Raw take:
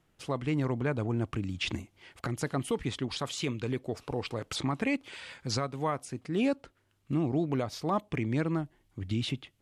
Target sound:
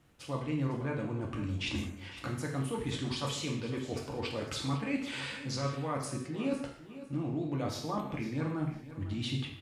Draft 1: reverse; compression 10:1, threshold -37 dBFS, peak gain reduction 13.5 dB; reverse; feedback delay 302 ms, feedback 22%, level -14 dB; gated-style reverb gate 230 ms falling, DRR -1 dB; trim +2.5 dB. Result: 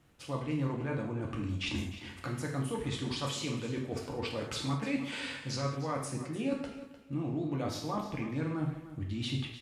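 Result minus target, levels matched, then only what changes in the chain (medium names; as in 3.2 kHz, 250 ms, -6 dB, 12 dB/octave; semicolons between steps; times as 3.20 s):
echo 201 ms early
change: feedback delay 503 ms, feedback 22%, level -14 dB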